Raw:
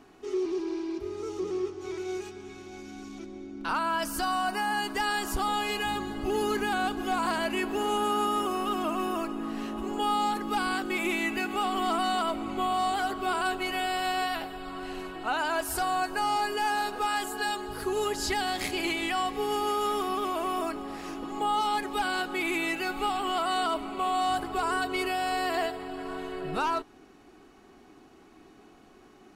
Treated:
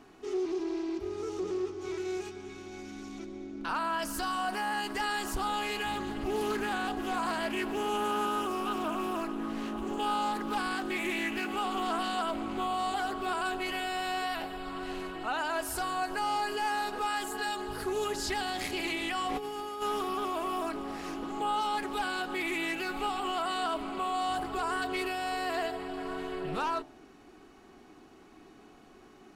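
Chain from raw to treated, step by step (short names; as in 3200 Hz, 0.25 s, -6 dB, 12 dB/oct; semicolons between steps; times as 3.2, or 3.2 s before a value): de-hum 67.64 Hz, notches 13; in parallel at +2 dB: limiter -28 dBFS, peak gain reduction 10 dB; 19.28–19.82 on the sum: negative-ratio compressor -28 dBFS, ratio -0.5; Doppler distortion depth 0.2 ms; gain -7 dB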